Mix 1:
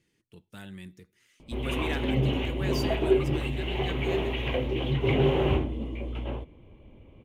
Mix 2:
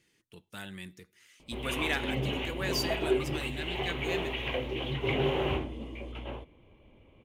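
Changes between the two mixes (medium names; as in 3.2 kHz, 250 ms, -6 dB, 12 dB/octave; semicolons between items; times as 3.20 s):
speech +5.5 dB; master: add bass shelf 480 Hz -8.5 dB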